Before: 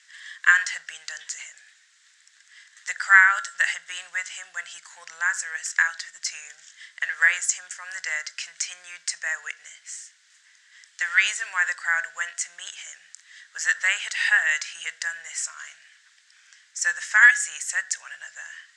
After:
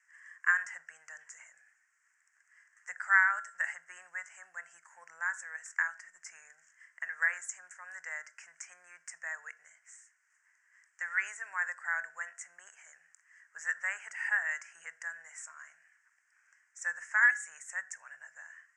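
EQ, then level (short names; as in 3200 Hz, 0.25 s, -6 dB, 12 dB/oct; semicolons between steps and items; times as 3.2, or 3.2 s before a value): Butterworth band-stop 3800 Hz, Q 0.7; air absorption 60 m; bell 930 Hz +3 dB 0.24 oct; -8.0 dB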